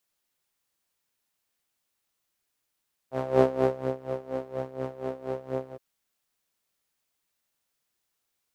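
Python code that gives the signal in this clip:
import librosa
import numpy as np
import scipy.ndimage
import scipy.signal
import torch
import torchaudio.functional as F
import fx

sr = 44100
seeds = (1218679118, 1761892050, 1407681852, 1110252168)

y = fx.sub_patch_tremolo(sr, seeds[0], note=48, wave='saw', wave2='saw', interval_st=0, detune_cents=16, level2_db=-9.0, sub_db=-15.0, noise_db=-13.0, kind='bandpass', cutoff_hz=450.0, q=2.9, env_oct=0.5, env_decay_s=0.27, env_sustain_pct=40, attack_ms=217.0, decay_s=0.61, sustain_db=-13.5, release_s=0.06, note_s=2.61, lfo_hz=4.2, tremolo_db=17.5)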